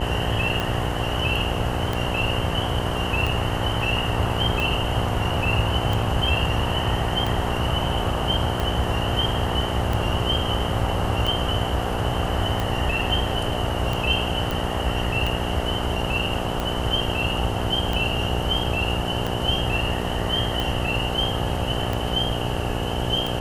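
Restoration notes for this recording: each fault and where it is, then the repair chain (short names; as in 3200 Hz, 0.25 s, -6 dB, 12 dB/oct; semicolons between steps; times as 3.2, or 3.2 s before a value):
buzz 60 Hz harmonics 15 -28 dBFS
tick 45 rpm
14.51 pop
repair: de-click; de-hum 60 Hz, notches 15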